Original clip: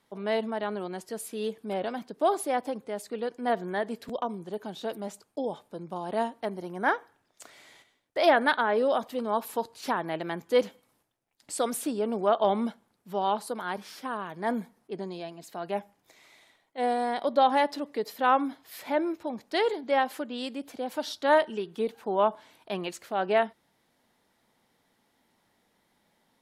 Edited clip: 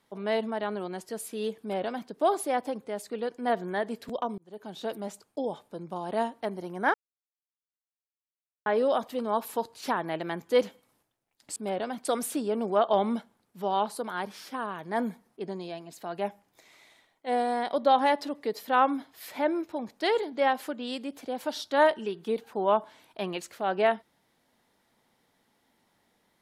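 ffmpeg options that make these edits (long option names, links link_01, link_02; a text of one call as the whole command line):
ffmpeg -i in.wav -filter_complex "[0:a]asplit=6[link_01][link_02][link_03][link_04][link_05][link_06];[link_01]atrim=end=4.38,asetpts=PTS-STARTPTS,afade=type=out:start_time=4.376:duration=0.004:curve=hsin[link_07];[link_02]atrim=start=4.38:end=6.94,asetpts=PTS-STARTPTS,afade=type=in:duration=0.44,afade=type=out:start_time=2.556:duration=0.004:curve=hsin[link_08];[link_03]atrim=start=6.94:end=8.66,asetpts=PTS-STARTPTS,volume=0[link_09];[link_04]atrim=start=8.66:end=11.562,asetpts=PTS-STARTPTS,afade=type=in:duration=0.004:curve=hsin[link_10];[link_05]atrim=start=1.598:end=2.092[link_11];[link_06]atrim=start=11.558[link_12];[link_07][link_08][link_09][link_10]concat=n=4:v=0:a=1[link_13];[link_13][link_11]acrossfade=duration=0.004:curve1=hsin:curve2=hsin[link_14];[link_14][link_12]acrossfade=duration=0.004:curve1=hsin:curve2=hsin" out.wav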